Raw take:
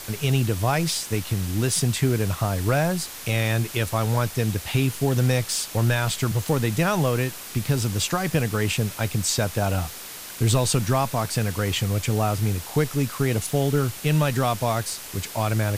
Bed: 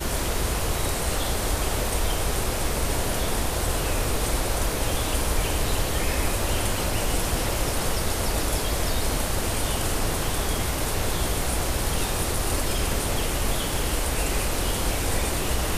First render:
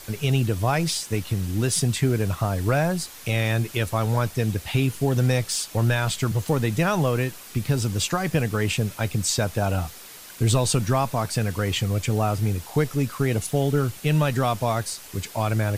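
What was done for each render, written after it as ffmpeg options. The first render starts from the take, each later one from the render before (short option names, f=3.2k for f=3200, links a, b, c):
-af "afftdn=nr=6:nf=-38"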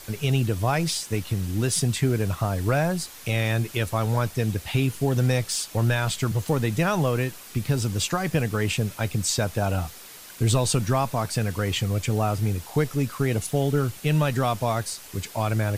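-af "volume=-1dB"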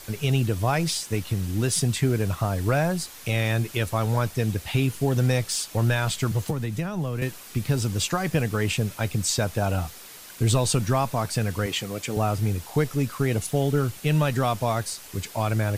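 -filter_complex "[0:a]asettb=1/sr,asplit=3[a][b][c];[a]atrim=end=6.504[d];[b]atrim=start=6.5:end=7.22,asetpts=PTS-STARTPTS,afade=t=in:d=0.004:c=qsin,afade=t=out:st=0.716:d=0.004:c=qsin,acrossover=split=290|670[e][f][g];[e]acompressor=threshold=-26dB:ratio=4[h];[f]acompressor=threshold=-40dB:ratio=4[i];[g]acompressor=threshold=-39dB:ratio=4[j];[h][i][j]amix=inputs=3:normalize=0[k];[c]atrim=start=7.216[l];[d][k]acrossfade=d=0.004:c1=hsin:c2=qsin[m];[m][l]acrossfade=d=0.004:c1=qsin:c2=hsin,asettb=1/sr,asplit=3[n][o][p];[n]atrim=end=11.664[q];[o]atrim=start=11.66:end=12.17,asetpts=PTS-STARTPTS,afade=t=in:d=0.004:c=qsin,afade=t=out:st=0.506:d=0.004:c=qsin,highpass=220[r];[p]atrim=start=12.166[s];[q][r]acrossfade=d=0.004:c1=hsin:c2=qsin[t];[t][s]acrossfade=d=0.004:c1=qsin:c2=hsin"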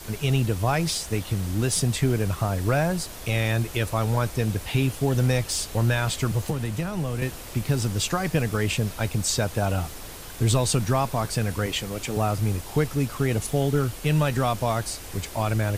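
-filter_complex "[1:a]volume=-16dB[a];[0:a][a]amix=inputs=2:normalize=0"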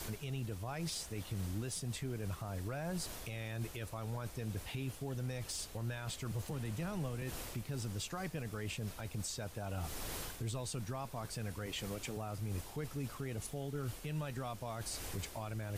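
-af "areverse,acompressor=threshold=-30dB:ratio=10,areverse,alimiter=level_in=7dB:limit=-24dB:level=0:latency=1:release=246,volume=-7dB"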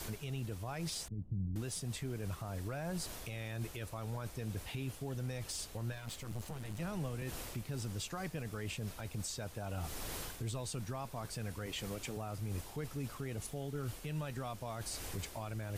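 -filter_complex "[0:a]asettb=1/sr,asplit=3[a][b][c];[a]atrim=end=1.084[d];[b]atrim=start=1.08:end=1.56,asetpts=PTS-STARTPTS,afade=t=in:d=0.004:c=qsin,afade=t=out:st=0.476:d=0.004:c=qsin,lowpass=f=190:t=q:w=1.5[e];[c]atrim=start=1.556[f];[d][e]acrossfade=d=0.004:c1=hsin:c2=qsin[g];[g][f]acrossfade=d=0.004:c1=qsin:c2=hsin,asettb=1/sr,asplit=3[h][i][j];[h]atrim=end=5.924[k];[i]atrim=start=5.92:end=6.8,asetpts=PTS-STARTPTS,afade=t=in:d=0.004:c=qsin,afade=t=out:st=0.876:d=0.004:c=qsin,aeval=exprs='clip(val(0),-1,0.00398)':c=same[l];[j]atrim=start=6.796[m];[k][l]acrossfade=d=0.004:c1=hsin:c2=qsin[n];[n][m]acrossfade=d=0.004:c1=qsin:c2=hsin"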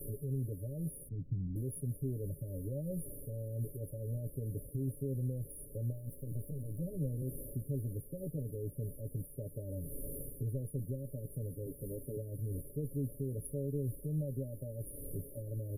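-af "afftfilt=real='re*(1-between(b*sr/4096,630,9500))':imag='im*(1-between(b*sr/4096,630,9500))':win_size=4096:overlap=0.75,aecho=1:1:7.2:0.74"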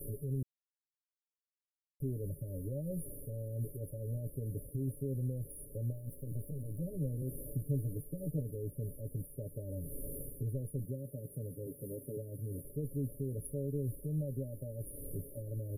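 -filter_complex "[0:a]asettb=1/sr,asplit=3[a][b][c];[a]atrim=end=7.454[d];[b]atrim=start=7.45:end=8.41,asetpts=PTS-STARTPTS,afade=t=in:d=0.004:c=qsin,afade=t=out:st=0.956:d=0.004:c=qsin,aecho=1:1:6.6:0.61,atrim=end_sample=42336[e];[c]atrim=start=8.406[f];[d][e]acrossfade=d=0.004:c1=hsin:c2=qsin[g];[g][f]acrossfade=d=0.004:c1=qsin:c2=hsin,asettb=1/sr,asplit=3[h][i][j];[h]atrim=end=10.854[k];[i]atrim=start=10.85:end=12.65,asetpts=PTS-STARTPTS,afade=t=in:d=0.004:c=qsin,afade=t=out:st=1.796:d=0.004:c=qsin,highpass=100[l];[j]atrim=start=12.646[m];[k][l]acrossfade=d=0.004:c1=hsin:c2=qsin[n];[n][m]acrossfade=d=0.004:c1=qsin:c2=hsin,asplit=3[o][p][q];[o]atrim=end=0.43,asetpts=PTS-STARTPTS,afade=t=out:st=0.426:d=0.004:c=hsin[r];[p]atrim=start=0.43:end=2,asetpts=PTS-STARTPTS,volume=0[s];[q]atrim=start=2,asetpts=PTS-STARTPTS,afade=t=in:d=0.004:c=hsin[t];[r][s][t]concat=n=3:v=0:a=1"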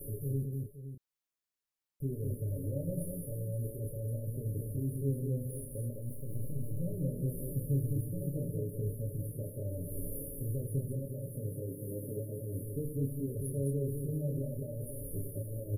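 -filter_complex "[0:a]asplit=2[a][b];[b]adelay=29,volume=-4.5dB[c];[a][c]amix=inputs=2:normalize=0,aecho=1:1:80|86|106|207|520:0.224|0.188|0.2|0.596|0.266"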